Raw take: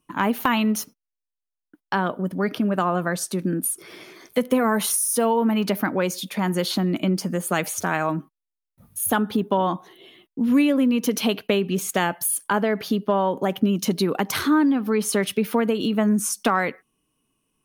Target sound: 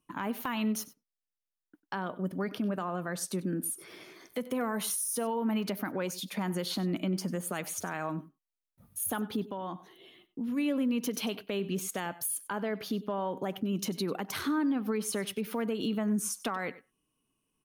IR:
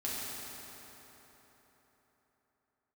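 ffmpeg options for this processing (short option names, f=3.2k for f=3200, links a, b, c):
-filter_complex "[0:a]alimiter=limit=-16dB:level=0:latency=1:release=159,asplit=3[a][b][c];[a]afade=t=out:st=9.46:d=0.02[d];[b]acompressor=threshold=-34dB:ratio=1.5,afade=t=in:st=9.46:d=0.02,afade=t=out:st=10.56:d=0.02[e];[c]afade=t=in:st=10.56:d=0.02[f];[d][e][f]amix=inputs=3:normalize=0,aecho=1:1:96:0.119,volume=-7dB"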